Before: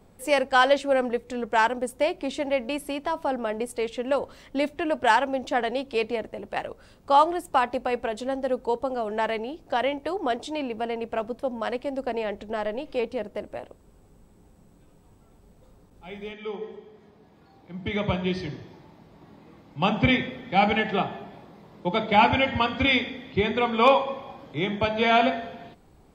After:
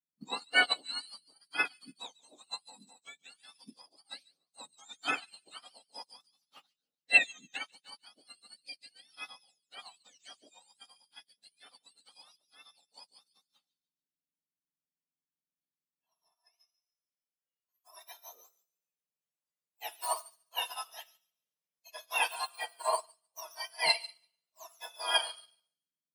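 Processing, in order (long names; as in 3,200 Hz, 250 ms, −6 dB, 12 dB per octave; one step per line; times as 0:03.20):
frequency axis turned over on the octave scale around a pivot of 1,500 Hz
delay with a high-pass on its return 144 ms, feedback 41%, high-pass 4,300 Hz, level −3.5 dB
expander for the loud parts 2.5 to 1, over −45 dBFS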